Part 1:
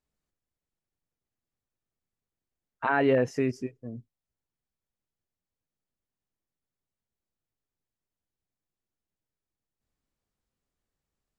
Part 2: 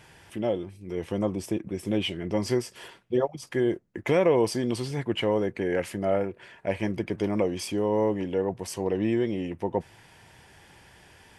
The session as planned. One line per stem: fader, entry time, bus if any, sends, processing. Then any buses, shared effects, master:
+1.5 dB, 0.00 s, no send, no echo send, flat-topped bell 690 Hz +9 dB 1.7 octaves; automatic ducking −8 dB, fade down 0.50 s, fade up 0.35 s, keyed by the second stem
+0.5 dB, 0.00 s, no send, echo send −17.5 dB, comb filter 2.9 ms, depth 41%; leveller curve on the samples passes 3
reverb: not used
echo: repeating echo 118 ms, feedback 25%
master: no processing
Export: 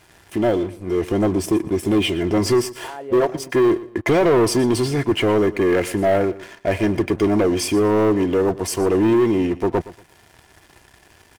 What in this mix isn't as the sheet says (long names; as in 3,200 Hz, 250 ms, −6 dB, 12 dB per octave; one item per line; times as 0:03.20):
stem 1 +1.5 dB → −7.5 dB
master: extra parametric band 3,500 Hz −3 dB 1.7 octaves